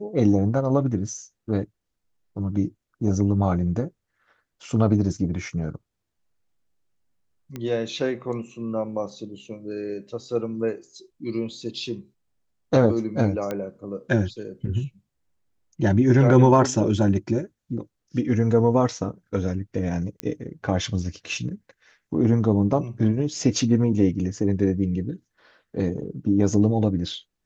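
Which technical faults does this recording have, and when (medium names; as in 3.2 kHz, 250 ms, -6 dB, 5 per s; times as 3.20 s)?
7.56 s: pop -19 dBFS
13.51 s: pop -15 dBFS
20.20 s: pop -13 dBFS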